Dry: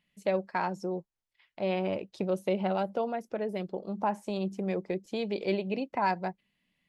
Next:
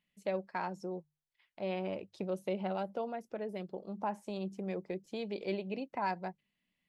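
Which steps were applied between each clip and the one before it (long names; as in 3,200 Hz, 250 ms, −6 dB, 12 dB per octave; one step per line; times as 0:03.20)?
mains-hum notches 50/100/150 Hz
level −6.5 dB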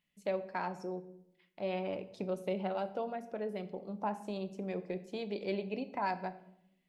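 rectangular room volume 220 cubic metres, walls mixed, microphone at 0.32 metres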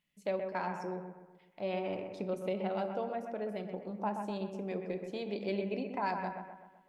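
bucket-brigade delay 127 ms, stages 2,048, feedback 49%, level −6.5 dB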